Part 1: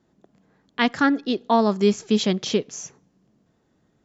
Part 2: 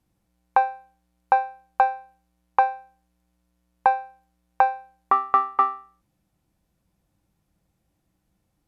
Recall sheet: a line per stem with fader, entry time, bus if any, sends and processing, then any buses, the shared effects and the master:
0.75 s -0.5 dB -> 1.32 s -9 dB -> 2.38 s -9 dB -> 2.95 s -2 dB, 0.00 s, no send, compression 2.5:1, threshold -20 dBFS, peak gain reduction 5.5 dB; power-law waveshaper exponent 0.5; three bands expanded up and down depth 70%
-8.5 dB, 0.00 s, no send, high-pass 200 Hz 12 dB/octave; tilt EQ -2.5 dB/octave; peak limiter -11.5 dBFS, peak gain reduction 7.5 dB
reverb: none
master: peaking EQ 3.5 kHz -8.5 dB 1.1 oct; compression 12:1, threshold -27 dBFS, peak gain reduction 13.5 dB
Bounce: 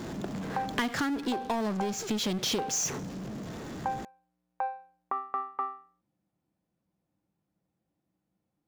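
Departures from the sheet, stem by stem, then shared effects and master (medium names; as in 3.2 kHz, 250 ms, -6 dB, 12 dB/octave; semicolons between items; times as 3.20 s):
stem 1: missing three bands expanded up and down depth 70%; master: missing peaking EQ 3.5 kHz -8.5 dB 1.1 oct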